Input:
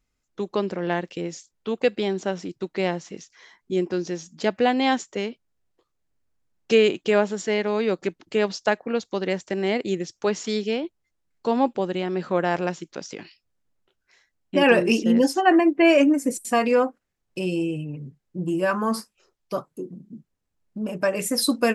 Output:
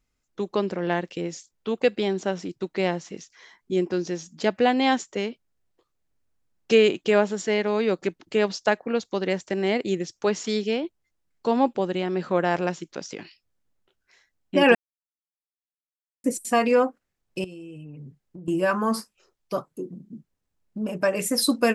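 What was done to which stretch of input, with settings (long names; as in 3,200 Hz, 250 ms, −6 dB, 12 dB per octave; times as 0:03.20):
0:14.75–0:16.24: silence
0:17.44–0:18.48: downward compressor 12 to 1, threshold −37 dBFS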